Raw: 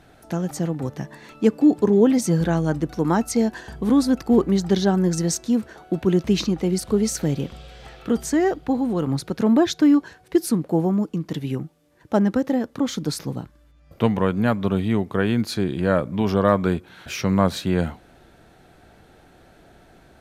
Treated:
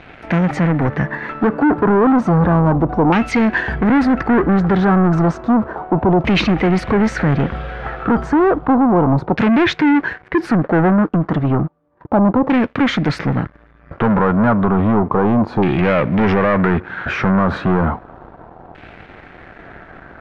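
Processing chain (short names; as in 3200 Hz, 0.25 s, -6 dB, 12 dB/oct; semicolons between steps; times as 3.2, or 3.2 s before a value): limiter -13.5 dBFS, peak gain reduction 10 dB; sample leveller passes 3; LFO low-pass saw down 0.32 Hz 890–2500 Hz; gain +3.5 dB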